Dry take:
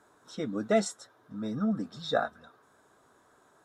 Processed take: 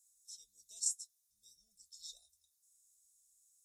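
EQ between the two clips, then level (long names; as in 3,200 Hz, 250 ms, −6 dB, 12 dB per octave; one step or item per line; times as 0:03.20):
high-pass filter 77 Hz 12 dB per octave
inverse Chebyshev band-stop filter 120–2,100 Hz, stop band 60 dB
Butterworth band-reject 1,500 Hz, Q 1.7
+6.0 dB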